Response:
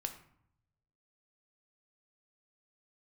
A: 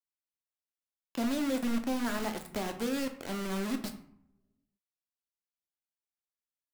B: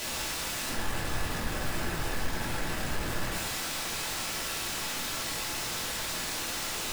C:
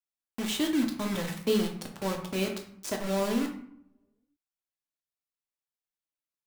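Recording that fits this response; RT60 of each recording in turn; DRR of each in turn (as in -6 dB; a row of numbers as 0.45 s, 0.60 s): A; 0.70 s, 0.65 s, 0.65 s; 5.5 dB, -3.5 dB, 1.5 dB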